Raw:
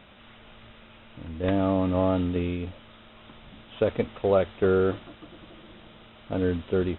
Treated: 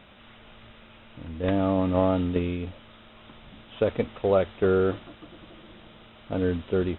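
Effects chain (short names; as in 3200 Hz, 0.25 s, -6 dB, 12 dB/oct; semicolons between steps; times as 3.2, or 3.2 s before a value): 1.77–2.52 transient shaper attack +7 dB, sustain 0 dB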